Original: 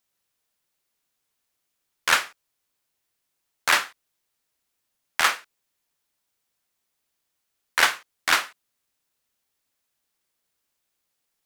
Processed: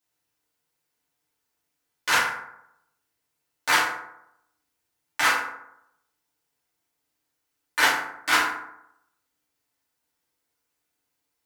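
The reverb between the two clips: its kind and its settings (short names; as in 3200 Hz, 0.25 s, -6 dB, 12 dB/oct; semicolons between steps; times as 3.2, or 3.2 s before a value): FDN reverb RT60 0.79 s, low-frequency decay 1×, high-frequency decay 0.45×, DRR -8.5 dB; gain -8 dB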